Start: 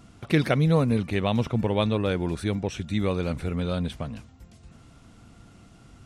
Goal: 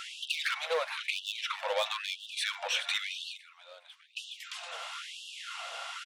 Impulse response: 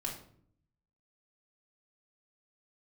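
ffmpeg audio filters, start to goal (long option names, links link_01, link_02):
-filter_complex "[0:a]equalizer=frequency=3200:width_type=o:width=0.75:gain=6.5,asplit=2[link_01][link_02];[link_02]highpass=frequency=720:poles=1,volume=26dB,asoftclip=type=tanh:threshold=-5.5dB[link_03];[link_01][link_03]amix=inputs=2:normalize=0,lowpass=frequency=3400:poles=1,volume=-6dB,acompressor=threshold=-26dB:ratio=10,aecho=1:1:417|834|1251|1668:0.211|0.0824|0.0321|0.0125,asplit=3[link_04][link_05][link_06];[link_04]afade=type=out:start_time=3.36:duration=0.02[link_07];[link_05]agate=range=-21dB:threshold=-24dB:ratio=16:detection=peak,afade=type=in:start_time=3.36:duration=0.02,afade=type=out:start_time=4.16:duration=0.02[link_08];[link_06]afade=type=in:start_time=4.16:duration=0.02[link_09];[link_07][link_08][link_09]amix=inputs=3:normalize=0,afftfilt=real='re*gte(b*sr/1024,460*pow(2700/460,0.5+0.5*sin(2*PI*1*pts/sr)))':imag='im*gte(b*sr/1024,460*pow(2700/460,0.5+0.5*sin(2*PI*1*pts/sr)))':win_size=1024:overlap=0.75"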